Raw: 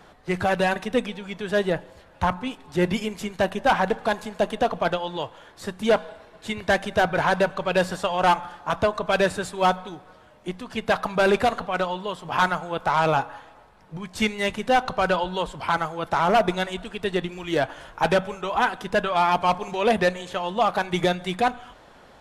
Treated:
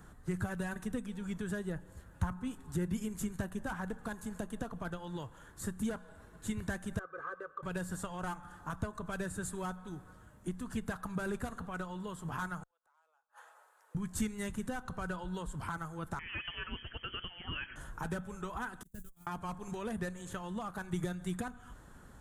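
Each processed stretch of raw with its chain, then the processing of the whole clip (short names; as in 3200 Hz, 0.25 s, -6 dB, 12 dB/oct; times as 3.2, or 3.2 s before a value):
6.99–7.63 double band-pass 810 Hz, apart 1.1 oct + comb 2.5 ms, depth 80%
12.63–13.95 steep high-pass 500 Hz + flipped gate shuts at -28 dBFS, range -42 dB
16.19–17.76 compressor 4:1, threshold -23 dBFS + inverted band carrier 3200 Hz
18.83–19.27 switching spikes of -23 dBFS + passive tone stack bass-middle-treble 10-0-1 + gate -46 dBFS, range -26 dB
whole clip: band shelf 3400 Hz -14.5 dB; compressor 3:1, threshold -31 dBFS; passive tone stack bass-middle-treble 6-0-2; gain +16.5 dB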